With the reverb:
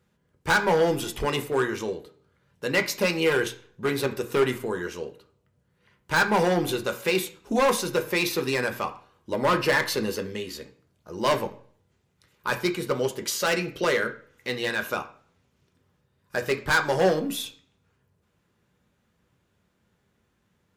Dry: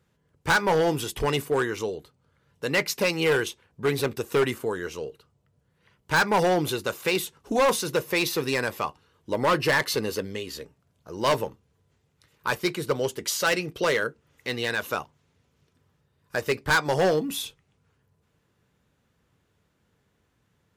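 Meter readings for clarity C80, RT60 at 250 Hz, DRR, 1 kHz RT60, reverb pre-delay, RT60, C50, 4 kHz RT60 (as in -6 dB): 17.0 dB, 0.55 s, 5.5 dB, 0.50 s, 3 ms, 0.50 s, 13.0 dB, 0.45 s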